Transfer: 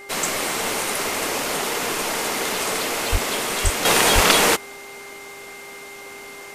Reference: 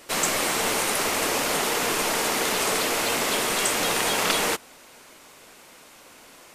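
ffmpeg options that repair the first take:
ffmpeg -i in.wav -filter_complex "[0:a]bandreject=frequency=400.2:width_type=h:width=4,bandreject=frequency=800.4:width_type=h:width=4,bandreject=frequency=1200.6:width_type=h:width=4,bandreject=frequency=1600.8:width_type=h:width=4,bandreject=frequency=2100:width=30,asplit=3[link_01][link_02][link_03];[link_01]afade=type=out:start_time=3.11:duration=0.02[link_04];[link_02]highpass=frequency=140:width=0.5412,highpass=frequency=140:width=1.3066,afade=type=in:start_time=3.11:duration=0.02,afade=type=out:start_time=3.23:duration=0.02[link_05];[link_03]afade=type=in:start_time=3.23:duration=0.02[link_06];[link_04][link_05][link_06]amix=inputs=3:normalize=0,asplit=3[link_07][link_08][link_09];[link_07]afade=type=out:start_time=3.63:duration=0.02[link_10];[link_08]highpass=frequency=140:width=0.5412,highpass=frequency=140:width=1.3066,afade=type=in:start_time=3.63:duration=0.02,afade=type=out:start_time=3.75:duration=0.02[link_11];[link_09]afade=type=in:start_time=3.75:duration=0.02[link_12];[link_10][link_11][link_12]amix=inputs=3:normalize=0,asplit=3[link_13][link_14][link_15];[link_13]afade=type=out:start_time=4.14:duration=0.02[link_16];[link_14]highpass=frequency=140:width=0.5412,highpass=frequency=140:width=1.3066,afade=type=in:start_time=4.14:duration=0.02,afade=type=out:start_time=4.26:duration=0.02[link_17];[link_15]afade=type=in:start_time=4.26:duration=0.02[link_18];[link_16][link_17][link_18]amix=inputs=3:normalize=0,asetnsamples=nb_out_samples=441:pad=0,asendcmd='3.85 volume volume -7.5dB',volume=0dB" out.wav

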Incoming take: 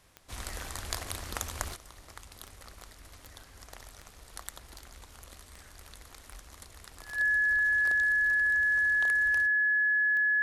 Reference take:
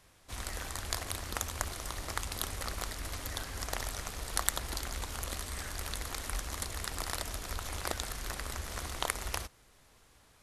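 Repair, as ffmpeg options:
ffmpeg -i in.wav -af "adeclick=threshold=4,bandreject=frequency=1700:width=30,asetnsamples=nb_out_samples=441:pad=0,asendcmd='1.76 volume volume 12dB',volume=0dB" out.wav

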